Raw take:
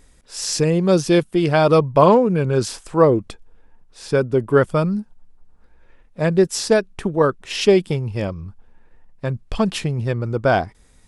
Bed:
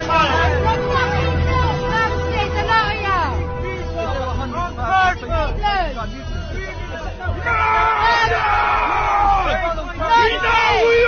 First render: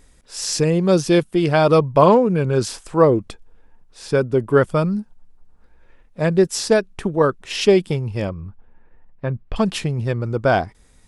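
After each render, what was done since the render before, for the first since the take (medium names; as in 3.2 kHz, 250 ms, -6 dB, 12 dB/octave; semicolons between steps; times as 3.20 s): 8.29–9.56 s: low-pass 2.5 kHz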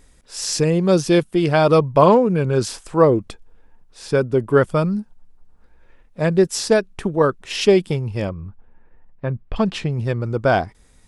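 8.29–9.92 s: distance through air 86 m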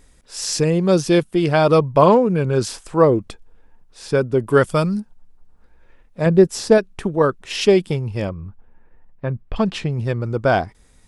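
4.47–5.00 s: treble shelf 2.9 kHz +10.5 dB; 6.26–6.78 s: tilt shelf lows +4 dB, about 1.2 kHz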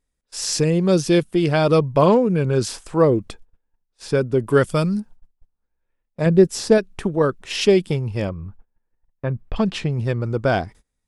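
gate -40 dBFS, range -25 dB; dynamic bell 940 Hz, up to -5 dB, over -26 dBFS, Q 0.87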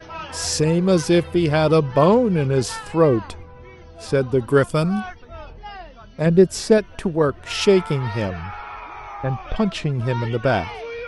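add bed -18 dB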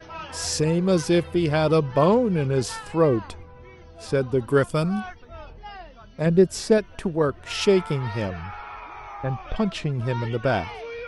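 trim -3.5 dB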